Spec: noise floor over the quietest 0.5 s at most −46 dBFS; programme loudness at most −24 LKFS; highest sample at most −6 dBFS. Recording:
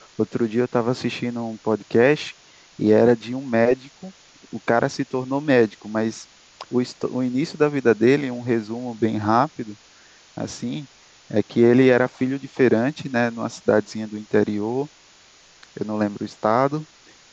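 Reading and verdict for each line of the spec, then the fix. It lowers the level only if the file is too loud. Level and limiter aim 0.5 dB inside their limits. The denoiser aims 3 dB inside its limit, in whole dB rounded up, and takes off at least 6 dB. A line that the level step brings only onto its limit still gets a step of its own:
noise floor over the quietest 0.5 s −52 dBFS: in spec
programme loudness −21.5 LKFS: out of spec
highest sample −4.5 dBFS: out of spec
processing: level −3 dB

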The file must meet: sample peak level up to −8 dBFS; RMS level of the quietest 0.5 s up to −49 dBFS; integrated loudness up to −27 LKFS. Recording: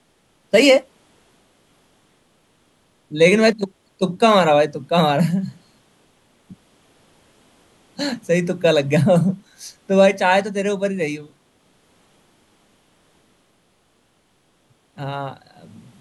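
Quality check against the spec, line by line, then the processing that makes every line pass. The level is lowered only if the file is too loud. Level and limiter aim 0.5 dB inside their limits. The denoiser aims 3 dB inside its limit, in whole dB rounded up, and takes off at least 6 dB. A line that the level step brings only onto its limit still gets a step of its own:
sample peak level −2.5 dBFS: out of spec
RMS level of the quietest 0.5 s −62 dBFS: in spec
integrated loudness −17.5 LKFS: out of spec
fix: level −10 dB

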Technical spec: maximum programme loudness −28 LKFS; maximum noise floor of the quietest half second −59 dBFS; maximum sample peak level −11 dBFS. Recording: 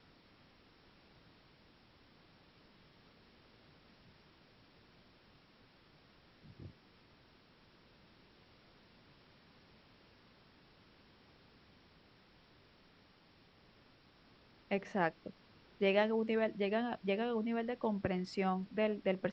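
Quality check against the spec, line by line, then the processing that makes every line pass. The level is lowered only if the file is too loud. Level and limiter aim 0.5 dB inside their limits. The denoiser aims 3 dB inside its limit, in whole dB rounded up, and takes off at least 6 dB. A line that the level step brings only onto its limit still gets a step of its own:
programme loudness −36.0 LKFS: in spec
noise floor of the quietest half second −66 dBFS: in spec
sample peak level −18.5 dBFS: in spec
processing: no processing needed

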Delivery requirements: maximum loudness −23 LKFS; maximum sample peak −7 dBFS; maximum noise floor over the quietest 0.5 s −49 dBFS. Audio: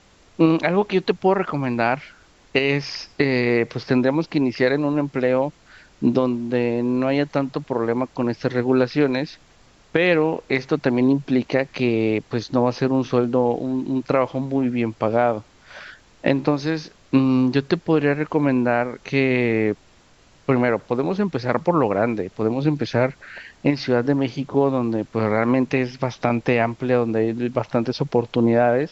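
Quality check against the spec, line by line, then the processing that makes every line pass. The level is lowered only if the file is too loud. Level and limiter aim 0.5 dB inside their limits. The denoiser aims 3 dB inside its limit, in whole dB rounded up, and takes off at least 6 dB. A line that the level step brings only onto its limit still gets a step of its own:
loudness −21.5 LKFS: out of spec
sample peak −2.5 dBFS: out of spec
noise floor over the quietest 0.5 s −53 dBFS: in spec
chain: level −2 dB
brickwall limiter −7.5 dBFS

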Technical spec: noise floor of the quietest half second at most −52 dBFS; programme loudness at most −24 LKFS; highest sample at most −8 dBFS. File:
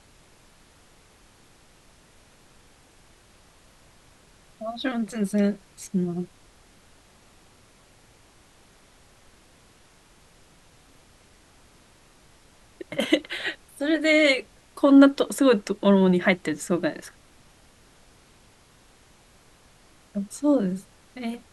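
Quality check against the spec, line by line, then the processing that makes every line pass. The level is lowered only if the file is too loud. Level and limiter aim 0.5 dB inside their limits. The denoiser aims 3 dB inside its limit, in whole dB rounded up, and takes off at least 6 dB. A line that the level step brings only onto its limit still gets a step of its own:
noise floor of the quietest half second −56 dBFS: in spec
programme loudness −23.0 LKFS: out of spec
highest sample −6.0 dBFS: out of spec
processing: level −1.5 dB
brickwall limiter −8.5 dBFS

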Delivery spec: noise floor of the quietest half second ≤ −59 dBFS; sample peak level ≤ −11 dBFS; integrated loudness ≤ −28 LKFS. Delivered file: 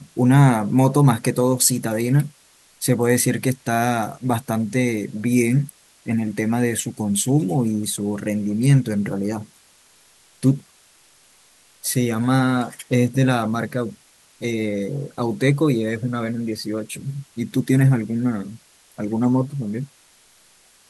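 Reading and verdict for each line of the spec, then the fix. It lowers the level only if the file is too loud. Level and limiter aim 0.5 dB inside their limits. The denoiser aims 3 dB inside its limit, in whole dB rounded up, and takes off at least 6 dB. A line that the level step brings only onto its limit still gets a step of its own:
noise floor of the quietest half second −54 dBFS: out of spec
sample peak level −3.5 dBFS: out of spec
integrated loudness −21.0 LKFS: out of spec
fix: level −7.5 dB
brickwall limiter −11.5 dBFS

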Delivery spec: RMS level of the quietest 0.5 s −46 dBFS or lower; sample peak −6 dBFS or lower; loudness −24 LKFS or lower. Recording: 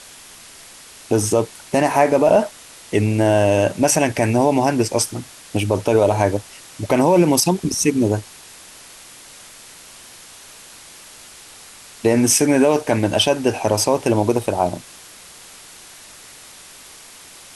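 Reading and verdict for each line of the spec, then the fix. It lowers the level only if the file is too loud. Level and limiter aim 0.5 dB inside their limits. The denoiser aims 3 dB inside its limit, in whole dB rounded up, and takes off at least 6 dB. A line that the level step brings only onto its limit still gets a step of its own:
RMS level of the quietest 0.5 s −42 dBFS: out of spec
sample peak −4.0 dBFS: out of spec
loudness −17.5 LKFS: out of spec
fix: level −7 dB

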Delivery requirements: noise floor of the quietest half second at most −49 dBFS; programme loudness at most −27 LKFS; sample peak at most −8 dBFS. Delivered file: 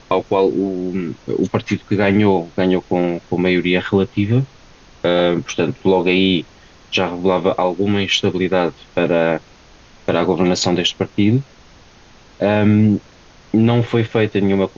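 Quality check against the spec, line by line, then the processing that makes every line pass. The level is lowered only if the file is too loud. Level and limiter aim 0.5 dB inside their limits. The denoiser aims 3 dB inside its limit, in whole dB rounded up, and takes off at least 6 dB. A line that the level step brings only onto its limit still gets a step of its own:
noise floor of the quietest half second −45 dBFS: out of spec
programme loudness −17.5 LKFS: out of spec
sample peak −4.0 dBFS: out of spec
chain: level −10 dB

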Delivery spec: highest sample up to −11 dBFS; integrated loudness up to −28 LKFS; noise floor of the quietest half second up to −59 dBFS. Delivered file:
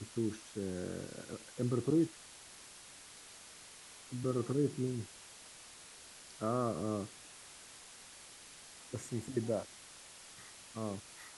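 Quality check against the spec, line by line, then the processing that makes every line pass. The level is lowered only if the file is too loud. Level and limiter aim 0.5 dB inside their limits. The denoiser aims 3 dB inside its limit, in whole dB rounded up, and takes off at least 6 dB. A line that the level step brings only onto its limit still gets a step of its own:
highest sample −21.5 dBFS: in spec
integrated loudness −38.0 LKFS: in spec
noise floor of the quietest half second −55 dBFS: out of spec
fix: broadband denoise 7 dB, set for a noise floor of −55 dBFS

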